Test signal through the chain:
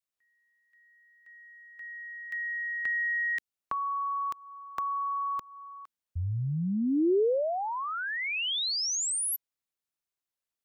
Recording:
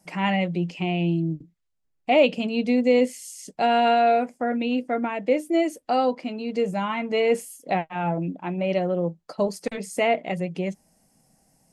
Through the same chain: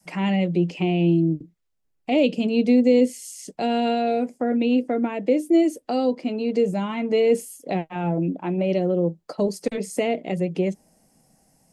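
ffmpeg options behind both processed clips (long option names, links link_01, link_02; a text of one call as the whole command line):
ffmpeg -i in.wav -filter_complex "[0:a]acrossover=split=400|3000[link_01][link_02][link_03];[link_02]acompressor=threshold=-35dB:ratio=4[link_04];[link_01][link_04][link_03]amix=inputs=3:normalize=0,adynamicequalizer=threshold=0.01:dfrequency=400:dqfactor=0.92:tfrequency=400:tqfactor=0.92:attack=5:release=100:ratio=0.375:range=3.5:mode=boostabove:tftype=bell,volume=1.5dB" out.wav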